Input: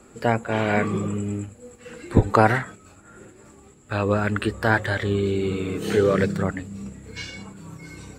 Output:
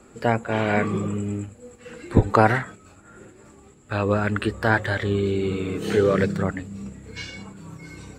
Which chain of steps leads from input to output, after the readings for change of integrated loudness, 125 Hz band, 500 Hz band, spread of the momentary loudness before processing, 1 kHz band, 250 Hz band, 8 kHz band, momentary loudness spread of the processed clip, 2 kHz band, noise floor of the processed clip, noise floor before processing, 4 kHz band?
0.0 dB, 0.0 dB, 0.0 dB, 19 LU, 0.0 dB, 0.0 dB, −2.0 dB, 19 LU, 0.0 dB, −51 dBFS, −51 dBFS, −0.5 dB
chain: high-shelf EQ 8,900 Hz −5.5 dB

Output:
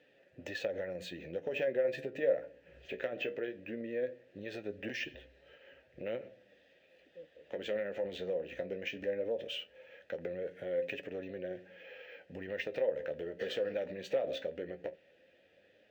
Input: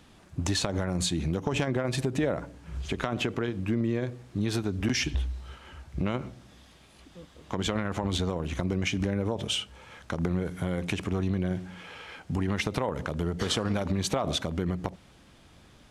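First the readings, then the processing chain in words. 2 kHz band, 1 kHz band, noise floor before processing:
−6.5 dB, −16.5 dB, −56 dBFS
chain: formant filter e
flanger 0.18 Hz, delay 6.7 ms, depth 9.9 ms, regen +53%
linearly interpolated sample-rate reduction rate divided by 2×
level +8.5 dB

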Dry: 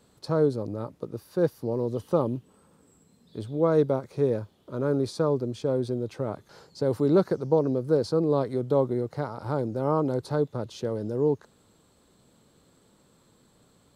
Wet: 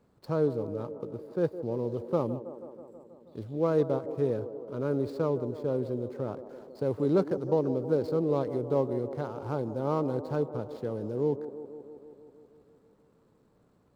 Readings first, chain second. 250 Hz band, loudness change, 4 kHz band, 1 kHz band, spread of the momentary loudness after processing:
−3.5 dB, −3.5 dB, can't be measured, −4.0 dB, 16 LU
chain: running median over 15 samples
on a send: delay with a band-pass on its return 161 ms, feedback 71%, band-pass 480 Hz, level −11 dB
on the sum: level −4 dB

